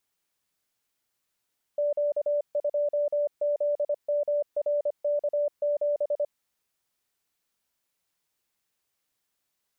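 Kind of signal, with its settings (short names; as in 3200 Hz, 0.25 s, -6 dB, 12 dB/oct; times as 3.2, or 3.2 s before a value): Morse "Q2ZMRK7" 25 wpm 585 Hz -22.5 dBFS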